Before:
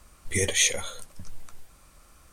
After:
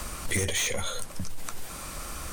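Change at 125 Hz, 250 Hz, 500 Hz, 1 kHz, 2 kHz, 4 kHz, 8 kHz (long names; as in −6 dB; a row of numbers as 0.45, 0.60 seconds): +2.0, +1.0, −2.0, +7.0, −2.5, −4.0, −4.5 decibels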